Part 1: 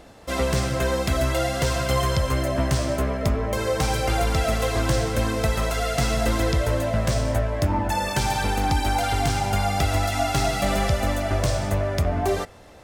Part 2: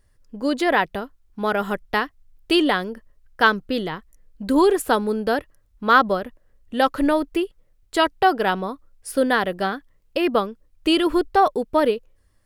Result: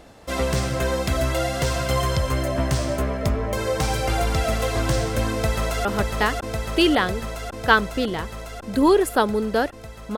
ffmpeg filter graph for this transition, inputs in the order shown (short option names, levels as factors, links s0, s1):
-filter_complex "[0:a]apad=whole_dur=10.17,atrim=end=10.17,atrim=end=5.852[s0];[1:a]atrim=start=1.578:end=5.9[s1];[s0][s1]acrossfade=d=0.004:c1=hsin:c2=hsin,asplit=2[s2][s3];[s3]afade=t=in:st=5.32:d=0.01,afade=t=out:st=5.85:d=0.01,aecho=0:1:550|1100|1650|2200|2750|3300|3850|4400|4950|5500|6050|6600:0.707946|0.566357|0.453085|0.362468|0.289975|0.23198|0.185584|0.148467|0.118774|0.0950189|0.0760151|0.0608121[s4];[s2][s4]amix=inputs=2:normalize=0"